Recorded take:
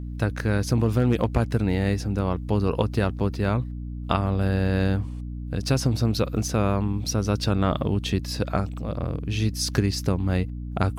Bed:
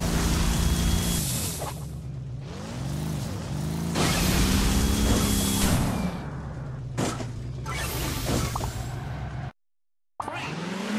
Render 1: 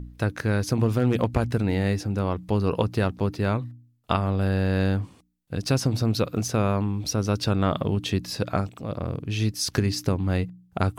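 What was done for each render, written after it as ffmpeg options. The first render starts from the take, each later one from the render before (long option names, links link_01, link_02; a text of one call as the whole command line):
ffmpeg -i in.wav -af "bandreject=frequency=60:width_type=h:width=4,bandreject=frequency=120:width_type=h:width=4,bandreject=frequency=180:width_type=h:width=4,bandreject=frequency=240:width_type=h:width=4,bandreject=frequency=300:width_type=h:width=4" out.wav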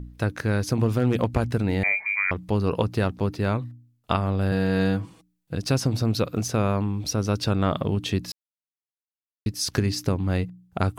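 ffmpeg -i in.wav -filter_complex "[0:a]asettb=1/sr,asplit=3[link_01][link_02][link_03];[link_01]atrim=end=1.834[link_04];[link_02]atrim=start=1.83:end=2.31,asetpts=PTS-STARTPTS,afade=type=in:duration=0.004:curve=qsin,afade=type=out:start_time=0.476:duration=0.004:curve=qsin,lowpass=frequency=2100:width_type=q:width=0.5098,lowpass=frequency=2100:width_type=q:width=0.6013,lowpass=frequency=2100:width_type=q:width=0.9,lowpass=frequency=2100:width_type=q:width=2.563,afreqshift=-2500[link_05];[link_03]atrim=start=2.306[link_06];[link_04][link_05]acrossfade=duration=0.004:curve1=hsin:curve2=qsin[link_07];[link_07][link_06]acrossfade=duration=0.004:curve1=qsin:curve2=hsin,asettb=1/sr,asplit=3[link_08][link_09][link_10];[link_08]atrim=end=4.514[link_11];[link_09]atrim=start=4.51:end=5.55,asetpts=PTS-STARTPTS,afade=type=in:duration=0.004:curve=qsin,afade=type=out:start_time=1.036:duration=0.004:curve=qsin,aecho=1:1:6.2:0.65,atrim=end_sample=45864[link_12];[link_10]atrim=start=5.546[link_13];[link_11][link_12]acrossfade=duration=0.004:curve1=hsin:curve2=qsin[link_14];[link_14][link_13]acrossfade=duration=0.004:curve1=qsin:curve2=hsin,asplit=3[link_15][link_16][link_17];[link_15]atrim=end=8.32,asetpts=PTS-STARTPTS,afade=type=out:start_time=8.316:duration=0.004:curve=hsin[link_18];[link_16]atrim=start=8.32:end=9.46,asetpts=PTS-STARTPTS,volume=0[link_19];[link_17]atrim=start=9.46,asetpts=PTS-STARTPTS,afade=type=in:duration=0.004:curve=hsin[link_20];[link_18][link_19][link_20]concat=n=3:v=0:a=1" out.wav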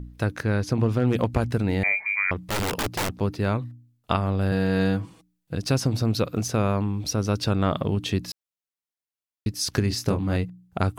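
ffmpeg -i in.wav -filter_complex "[0:a]asettb=1/sr,asplit=3[link_01][link_02][link_03];[link_01]atrim=end=0.434[link_04];[link_02]atrim=start=0.43:end=1.08,asetpts=PTS-STARTPTS,afade=type=in:duration=0.004:curve=qsin,afade=type=out:start_time=0.646:duration=0.004:curve=qsin,highshelf=frequency=7800:gain=-11.5[link_05];[link_03]atrim=start=1.076[link_06];[link_04][link_05]acrossfade=duration=0.004:curve1=hsin:curve2=qsin[link_07];[link_07][link_06]acrossfade=duration=0.004:curve1=qsin:curve2=hsin,asettb=1/sr,asplit=3[link_08][link_09][link_10];[link_08]atrim=end=2.494[link_11];[link_09]atrim=start=2.49:end=3.1,asetpts=PTS-STARTPTS,afade=type=in:duration=0.004:curve=qsin,afade=type=out:start_time=0.606:duration=0.004:curve=qsin,aeval=exprs='(mod(10.6*val(0)+1,2)-1)/10.6':channel_layout=same[link_12];[link_10]atrim=start=3.096[link_13];[link_11][link_12]acrossfade=duration=0.004:curve1=hsin:curve2=qsin[link_14];[link_14][link_13]acrossfade=duration=0.004:curve1=qsin:curve2=hsin,asettb=1/sr,asplit=3[link_15][link_16][link_17];[link_15]atrim=end=9.884[link_18];[link_16]atrim=start=9.88:end=10.36,asetpts=PTS-STARTPTS,afade=type=in:duration=0.004:curve=qsin,afade=type=out:start_time=0.476:duration=0.004:curve=qsin,asplit=2[link_19][link_20];[link_20]adelay=25,volume=-5dB[link_21];[link_19][link_21]amix=inputs=2:normalize=0,atrim=end_sample=21168[link_22];[link_17]atrim=start=10.356[link_23];[link_18][link_22]acrossfade=duration=0.004:curve1=hsin:curve2=qsin[link_24];[link_24][link_23]acrossfade=duration=0.004:curve1=qsin:curve2=hsin" out.wav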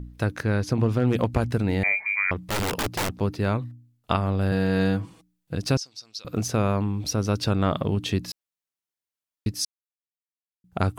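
ffmpeg -i in.wav -filter_complex "[0:a]asettb=1/sr,asplit=3[link_01][link_02][link_03];[link_01]atrim=end=5.774[link_04];[link_02]atrim=start=5.77:end=6.25,asetpts=PTS-STARTPTS,afade=type=in:duration=0.004:curve=qsin,afade=type=out:start_time=0.476:duration=0.004:curve=qsin,bandpass=frequency=5300:width_type=q:width=3.1[link_05];[link_03]atrim=start=6.246[link_06];[link_04][link_05]acrossfade=duration=0.004:curve1=hsin:curve2=qsin[link_07];[link_07][link_06]acrossfade=duration=0.004:curve1=qsin:curve2=hsin,asplit=3[link_08][link_09][link_10];[link_08]atrim=end=9.65,asetpts=PTS-STARTPTS,afade=type=out:start_time=9.646:duration=0.004:curve=hsin[link_11];[link_09]atrim=start=9.65:end=10.64,asetpts=PTS-STARTPTS,volume=0[link_12];[link_10]atrim=start=10.64,asetpts=PTS-STARTPTS,afade=type=in:duration=0.004:curve=hsin[link_13];[link_11][link_12][link_13]concat=n=3:v=0:a=1" out.wav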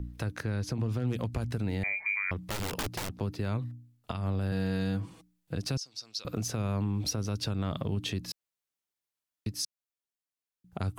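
ffmpeg -i in.wav -filter_complex "[0:a]acrossover=split=200|3000[link_01][link_02][link_03];[link_02]acompressor=threshold=-28dB:ratio=6[link_04];[link_01][link_04][link_03]amix=inputs=3:normalize=0,alimiter=limit=-21.5dB:level=0:latency=1:release=303" out.wav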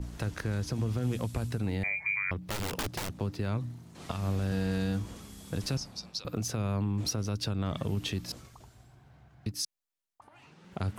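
ffmpeg -i in.wav -i bed.wav -filter_complex "[1:a]volume=-24dB[link_01];[0:a][link_01]amix=inputs=2:normalize=0" out.wav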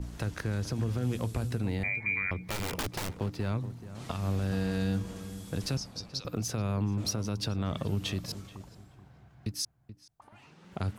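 ffmpeg -i in.wav -filter_complex "[0:a]asplit=2[link_01][link_02];[link_02]adelay=430,lowpass=frequency=1500:poles=1,volume=-13dB,asplit=2[link_03][link_04];[link_04]adelay=430,lowpass=frequency=1500:poles=1,volume=0.29,asplit=2[link_05][link_06];[link_06]adelay=430,lowpass=frequency=1500:poles=1,volume=0.29[link_07];[link_01][link_03][link_05][link_07]amix=inputs=4:normalize=0" out.wav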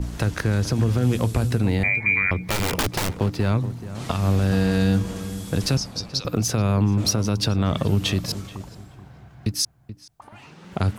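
ffmpeg -i in.wav -af "volume=10.5dB" out.wav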